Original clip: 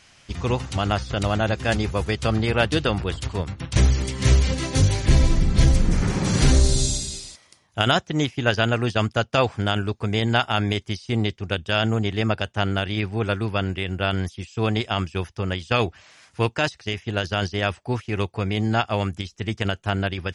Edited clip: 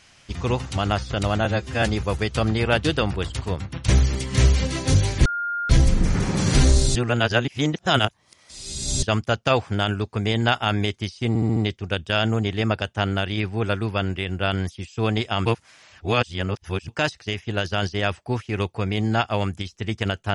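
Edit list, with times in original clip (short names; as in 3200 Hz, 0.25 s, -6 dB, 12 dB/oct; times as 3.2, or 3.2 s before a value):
1.45–1.7 stretch 1.5×
5.13–5.57 bleep 1410 Hz -23.5 dBFS
6.83–8.9 reverse
11.16 stutter 0.07 s, 5 plays
15.05–16.48 reverse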